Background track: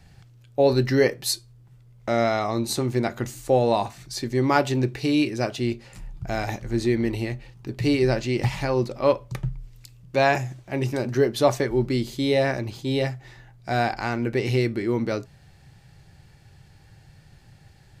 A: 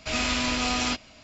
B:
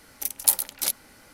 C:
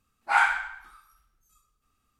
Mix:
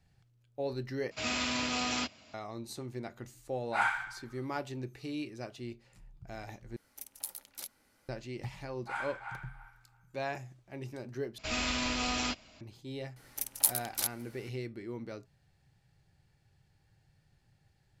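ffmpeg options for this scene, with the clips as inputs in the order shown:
-filter_complex "[1:a]asplit=2[s0][s1];[3:a]asplit=2[s2][s3];[2:a]asplit=2[s4][s5];[0:a]volume=0.141[s6];[s0]highpass=f=81:w=0.5412,highpass=f=81:w=1.3066[s7];[s4]acompressor=threshold=0.0355:ratio=3:attack=53:release=71:knee=1:detection=peak[s8];[s3]asplit=2[s9][s10];[s10]adelay=334,lowpass=f=2500:p=1,volume=0.562,asplit=2[s11][s12];[s12]adelay=334,lowpass=f=2500:p=1,volume=0.21,asplit=2[s13][s14];[s14]adelay=334,lowpass=f=2500:p=1,volume=0.21[s15];[s9][s11][s13][s15]amix=inputs=4:normalize=0[s16];[s5]asplit=2[s17][s18];[s18]adelay=559.8,volume=0.0398,highshelf=f=4000:g=-12.6[s19];[s17][s19]amix=inputs=2:normalize=0[s20];[s6]asplit=4[s21][s22][s23][s24];[s21]atrim=end=1.114[s25];[s7]atrim=end=1.23,asetpts=PTS-STARTPTS,volume=0.473[s26];[s22]atrim=start=2.336:end=6.764[s27];[s8]atrim=end=1.33,asetpts=PTS-STARTPTS,volume=0.141[s28];[s23]atrim=start=8.086:end=11.384[s29];[s1]atrim=end=1.23,asetpts=PTS-STARTPTS,volume=0.473[s30];[s24]atrim=start=12.606[s31];[s2]atrim=end=2.19,asetpts=PTS-STARTPTS,volume=0.376,afade=t=in:d=0.004:c=hsin,afade=t=out:st=2.186:d=0.004:c=hsin,adelay=3440[s32];[s16]atrim=end=2.19,asetpts=PTS-STARTPTS,volume=0.141,afade=t=in:d=0.004:c=hsin,afade=t=out:st=2.186:d=0.004:c=hsin,adelay=378378S[s33];[s20]atrim=end=1.33,asetpts=PTS-STARTPTS,volume=0.447,afade=t=in:d=0.004:c=hsin,afade=t=out:st=1.326:d=0.004:c=hsin,adelay=580356S[s34];[s25][s26]acrossfade=d=0.004:c1=hsin:c2=hsin[s35];[s35][s27]acrossfade=d=0.004:c1=hsin:c2=hsin[s36];[s36][s28]acrossfade=d=0.004:c1=hsin:c2=hsin[s37];[s37][s29]acrossfade=d=0.004:c1=hsin:c2=hsin[s38];[s38][s30]acrossfade=d=0.004:c1=hsin:c2=hsin[s39];[s39][s31]acrossfade=d=0.004:c1=hsin:c2=hsin[s40];[s40][s32][s33][s34]amix=inputs=4:normalize=0"

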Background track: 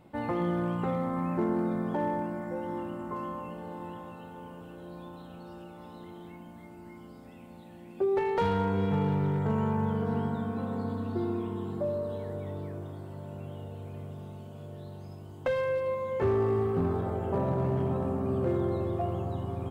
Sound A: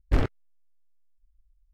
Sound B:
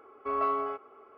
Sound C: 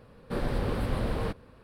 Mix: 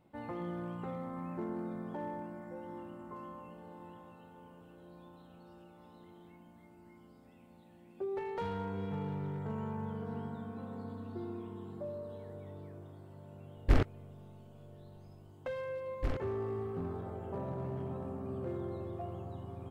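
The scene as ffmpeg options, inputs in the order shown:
-filter_complex "[1:a]asplit=2[s0][s1];[0:a]volume=0.299[s2];[s0]atrim=end=1.73,asetpts=PTS-STARTPTS,volume=0.708,afade=t=in:d=0.004:c=hsin,afade=t=out:st=1.726:d=0.004:c=hsin,adelay=13570[s3];[s1]atrim=end=1.73,asetpts=PTS-STARTPTS,volume=0.251,afade=t=in:d=0.004:c=hsin,afade=t=out:st=1.726:d=0.004:c=hsin,adelay=15910[s4];[s2][s3][s4]amix=inputs=3:normalize=0"

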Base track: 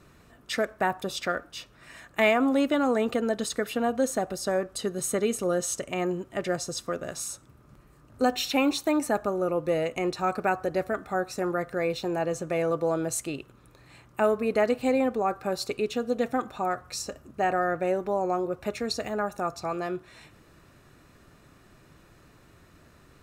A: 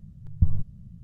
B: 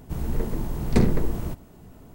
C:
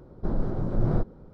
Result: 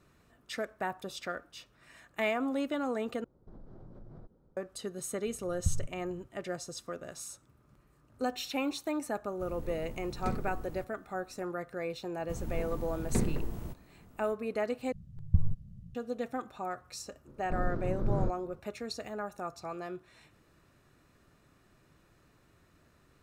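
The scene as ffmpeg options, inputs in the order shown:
-filter_complex "[3:a]asplit=2[s0][s1];[1:a]asplit=2[s2][s3];[2:a]asplit=2[s4][s5];[0:a]volume=0.355[s6];[s0]acompressor=threshold=0.0398:ratio=6:attack=3.2:release=140:knee=1:detection=peak[s7];[s1]equalizer=f=750:t=o:w=0.2:g=-14.5[s8];[s6]asplit=3[s9][s10][s11];[s9]atrim=end=3.244[s12];[s7]atrim=end=1.33,asetpts=PTS-STARTPTS,volume=0.133[s13];[s10]atrim=start=4.566:end=14.924[s14];[s3]atrim=end=1.03,asetpts=PTS-STARTPTS,volume=0.596[s15];[s11]atrim=start=15.946[s16];[s2]atrim=end=1.03,asetpts=PTS-STARTPTS,volume=0.335,afade=t=in:d=0.004:c=hsin,afade=t=out:st=1.026:d=0.004:c=hsin,adelay=5240[s17];[s4]atrim=end=2.14,asetpts=PTS-STARTPTS,volume=0.158,afade=t=in:d=0.004:c=hsin,afade=t=out:st=2.136:d=0.004:c=hsin,adelay=410130S[s18];[s5]atrim=end=2.14,asetpts=PTS-STARTPTS,volume=0.299,afade=t=in:d=0.004:c=hsin,afade=t=out:st=2.136:d=0.004:c=hsin,adelay=12190[s19];[s8]atrim=end=1.33,asetpts=PTS-STARTPTS,volume=0.501,afade=t=in:d=0.004:c=hsin,afade=t=out:st=1.326:d=0.004:c=hsin,adelay=17270[s20];[s12][s13]acrossfade=d=0.004:c1=hsin:c2=hsin[s21];[s21][s14]acrossfade=d=0.004:c1=hsin:c2=hsin[s22];[s22][s15]acrossfade=d=0.004:c1=hsin:c2=hsin[s23];[s23][s16]acrossfade=d=0.004:c1=hsin:c2=hsin[s24];[s24][s17][s18][s19][s20]amix=inputs=5:normalize=0"

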